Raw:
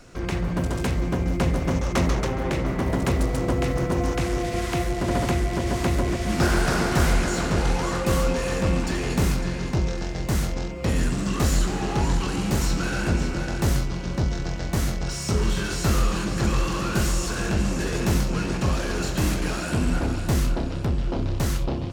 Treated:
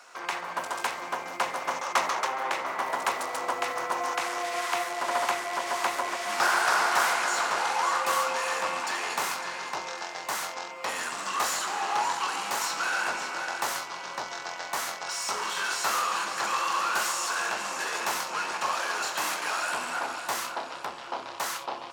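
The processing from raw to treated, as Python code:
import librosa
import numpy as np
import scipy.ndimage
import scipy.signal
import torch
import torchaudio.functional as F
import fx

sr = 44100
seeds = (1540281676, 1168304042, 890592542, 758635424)

y = fx.highpass_res(x, sr, hz=940.0, q=2.1)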